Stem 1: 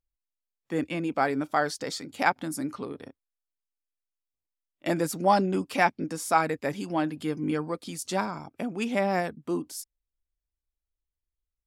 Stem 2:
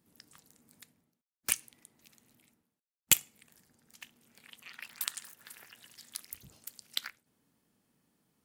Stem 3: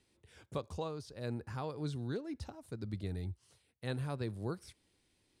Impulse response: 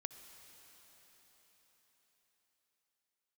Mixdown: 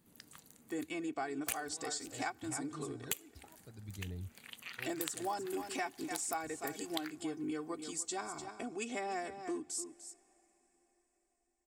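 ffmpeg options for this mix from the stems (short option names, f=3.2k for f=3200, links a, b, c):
-filter_complex "[0:a]lowpass=f=7.9k:t=q:w=5.7,aecho=1:1:2.7:0.8,volume=-10.5dB,asplit=4[a][b][c][d];[b]volume=-14.5dB[e];[c]volume=-12dB[f];[1:a]bandreject=f=5.3k:w=7.5,alimiter=limit=-9.5dB:level=0:latency=1:release=438,volume=3dB[g];[2:a]aphaser=in_gain=1:out_gain=1:delay=2.8:decay=0.61:speed=0.63:type=triangular,adelay=950,volume=-11dB[h];[d]apad=whole_len=280038[i];[h][i]sidechaincompress=threshold=-39dB:ratio=8:attack=16:release=129[j];[3:a]atrim=start_sample=2205[k];[e][k]afir=irnorm=-1:irlink=0[l];[f]aecho=0:1:297:1[m];[a][g][j][l][m]amix=inputs=5:normalize=0,acompressor=threshold=-36dB:ratio=4"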